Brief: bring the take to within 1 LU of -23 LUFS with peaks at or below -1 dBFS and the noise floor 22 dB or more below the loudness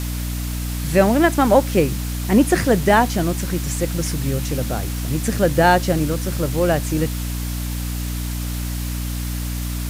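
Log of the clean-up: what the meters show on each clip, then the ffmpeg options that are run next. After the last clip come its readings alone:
hum 60 Hz; harmonics up to 300 Hz; hum level -23 dBFS; noise floor -25 dBFS; noise floor target -42 dBFS; loudness -20.0 LUFS; peak -1.5 dBFS; loudness target -23.0 LUFS
-> -af "bandreject=f=60:t=h:w=4,bandreject=f=120:t=h:w=4,bandreject=f=180:t=h:w=4,bandreject=f=240:t=h:w=4,bandreject=f=300:t=h:w=4"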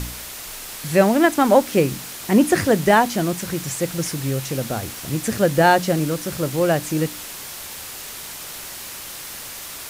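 hum none; noise floor -35 dBFS; noise floor target -42 dBFS
-> -af "afftdn=nr=7:nf=-35"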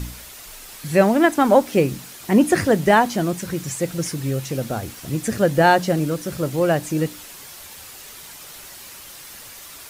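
noise floor -40 dBFS; noise floor target -42 dBFS
-> -af "afftdn=nr=6:nf=-40"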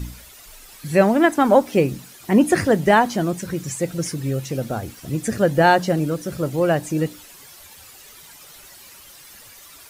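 noise floor -45 dBFS; loudness -20.0 LUFS; peak -2.0 dBFS; loudness target -23.0 LUFS
-> -af "volume=-3dB"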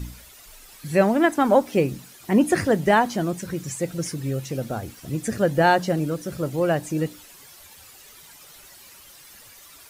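loudness -23.0 LUFS; peak -5.0 dBFS; noise floor -48 dBFS

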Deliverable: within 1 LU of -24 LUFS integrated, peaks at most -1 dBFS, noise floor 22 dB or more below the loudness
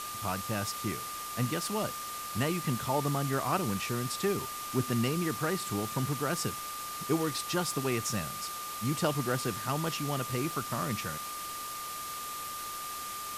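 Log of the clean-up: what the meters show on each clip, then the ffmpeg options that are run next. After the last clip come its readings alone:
steady tone 1200 Hz; tone level -39 dBFS; noise floor -40 dBFS; noise floor target -55 dBFS; loudness -32.5 LUFS; peak -16.0 dBFS; loudness target -24.0 LUFS
-> -af "bandreject=f=1.2k:w=30"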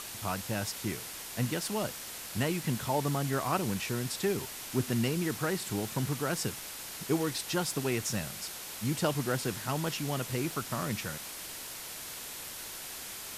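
steady tone none; noise floor -43 dBFS; noise floor target -56 dBFS
-> -af "afftdn=nr=13:nf=-43"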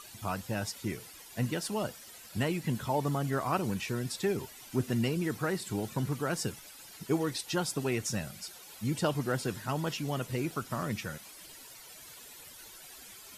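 noise floor -51 dBFS; noise floor target -56 dBFS
-> -af "afftdn=nr=6:nf=-51"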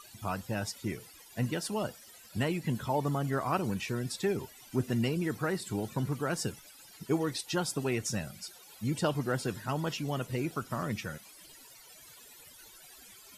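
noise floor -54 dBFS; noise floor target -56 dBFS
-> -af "afftdn=nr=6:nf=-54"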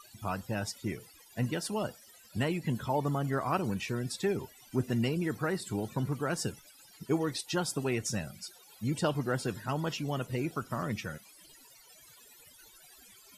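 noise floor -58 dBFS; loudness -33.5 LUFS; peak -16.0 dBFS; loudness target -24.0 LUFS
-> -af "volume=9.5dB"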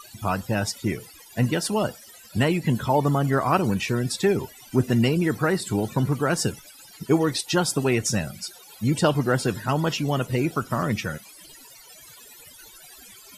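loudness -24.0 LUFS; peak -6.5 dBFS; noise floor -48 dBFS

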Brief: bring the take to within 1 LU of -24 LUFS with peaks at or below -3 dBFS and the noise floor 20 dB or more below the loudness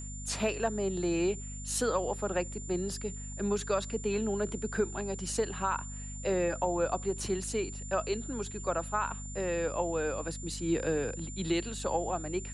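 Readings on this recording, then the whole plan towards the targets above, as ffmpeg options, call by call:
hum 50 Hz; harmonics up to 250 Hz; hum level -40 dBFS; steady tone 7200 Hz; tone level -44 dBFS; loudness -33.0 LUFS; peak -17.0 dBFS; loudness target -24.0 LUFS
-> -af "bandreject=f=50:t=h:w=6,bandreject=f=100:t=h:w=6,bandreject=f=150:t=h:w=6,bandreject=f=200:t=h:w=6,bandreject=f=250:t=h:w=6"
-af "bandreject=f=7.2k:w=30"
-af "volume=9dB"

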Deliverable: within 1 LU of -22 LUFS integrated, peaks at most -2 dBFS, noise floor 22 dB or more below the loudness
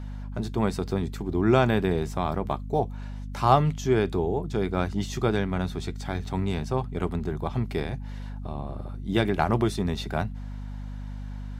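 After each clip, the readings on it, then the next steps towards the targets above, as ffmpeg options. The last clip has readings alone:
hum 50 Hz; harmonics up to 250 Hz; hum level -33 dBFS; loudness -27.0 LUFS; peak -4.5 dBFS; loudness target -22.0 LUFS
-> -af "bandreject=f=50:t=h:w=6,bandreject=f=100:t=h:w=6,bandreject=f=150:t=h:w=6,bandreject=f=200:t=h:w=6,bandreject=f=250:t=h:w=6"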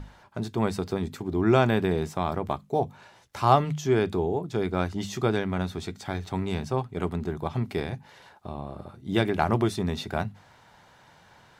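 hum none; loudness -27.5 LUFS; peak -5.0 dBFS; loudness target -22.0 LUFS
-> -af "volume=5.5dB,alimiter=limit=-2dB:level=0:latency=1"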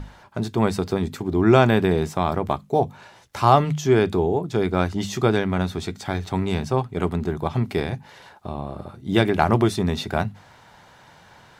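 loudness -22.0 LUFS; peak -2.0 dBFS; noise floor -51 dBFS

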